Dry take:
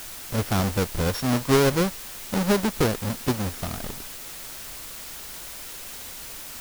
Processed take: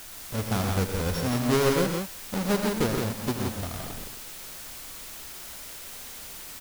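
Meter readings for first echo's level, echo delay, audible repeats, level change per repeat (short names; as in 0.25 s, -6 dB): -10.5 dB, 82 ms, 3, no steady repeat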